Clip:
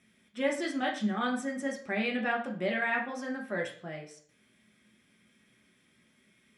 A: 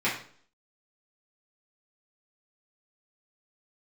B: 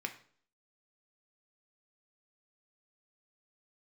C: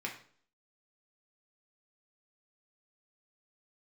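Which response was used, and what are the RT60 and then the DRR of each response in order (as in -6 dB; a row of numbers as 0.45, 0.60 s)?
C; 0.50, 0.50, 0.50 s; -9.5, 4.5, -1.0 dB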